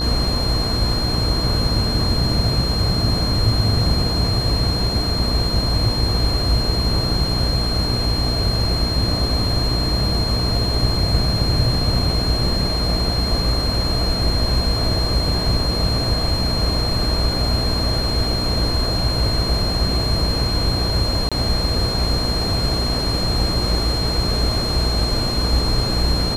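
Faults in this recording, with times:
buzz 60 Hz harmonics 20 -24 dBFS
tone 4200 Hz -23 dBFS
21.29–21.32 gap 26 ms

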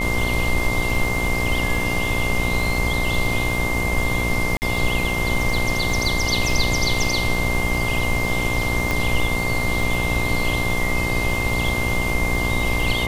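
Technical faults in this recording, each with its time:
buzz 60 Hz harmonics 20 -26 dBFS
crackle 38/s -26 dBFS
tone 2100 Hz -24 dBFS
4.57–4.62 gap 49 ms
8.91 pop -8 dBFS

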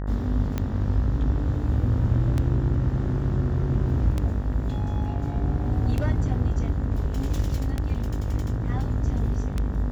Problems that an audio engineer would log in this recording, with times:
buzz 50 Hz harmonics 38 -29 dBFS
tick 33 1/3 rpm -14 dBFS

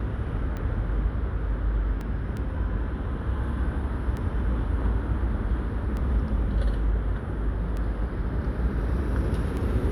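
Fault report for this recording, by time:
tick 33 1/3 rpm -22 dBFS
2.01 gap 2 ms

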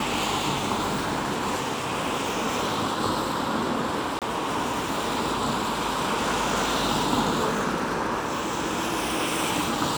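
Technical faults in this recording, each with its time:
4.19–4.22 gap 27 ms

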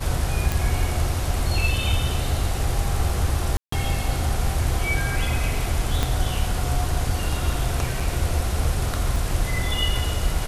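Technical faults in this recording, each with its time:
0.52 pop
3.57–3.72 gap 0.154 s
6.03 pop -8 dBFS
8 gap 4.9 ms
9.16 gap 2.5 ms

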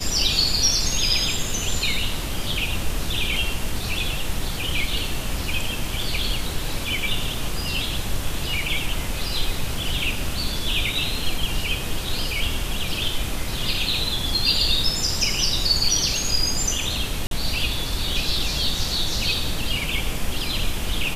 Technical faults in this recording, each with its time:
17.27–17.31 gap 42 ms

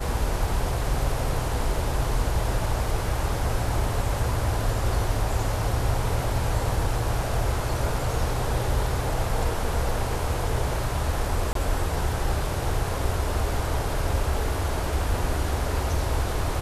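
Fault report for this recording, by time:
11.53–11.55 gap 23 ms

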